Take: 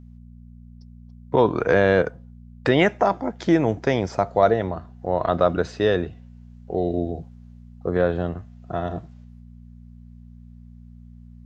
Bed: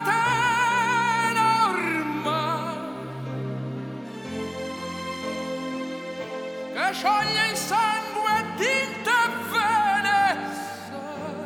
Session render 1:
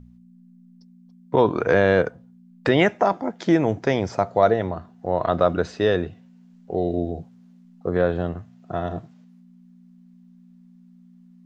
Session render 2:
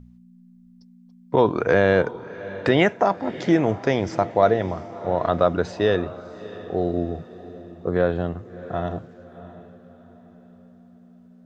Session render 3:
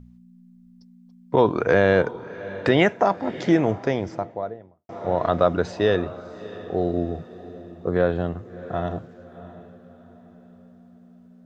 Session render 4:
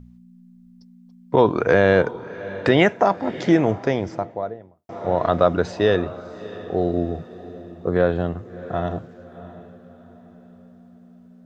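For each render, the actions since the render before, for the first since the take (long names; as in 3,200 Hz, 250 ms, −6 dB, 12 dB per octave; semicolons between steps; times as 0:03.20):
hum removal 60 Hz, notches 2
feedback delay with all-pass diffusion 666 ms, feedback 41%, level −16 dB
0:03.49–0:04.89: fade out and dull
level +2 dB; brickwall limiter −3 dBFS, peak gain reduction 1 dB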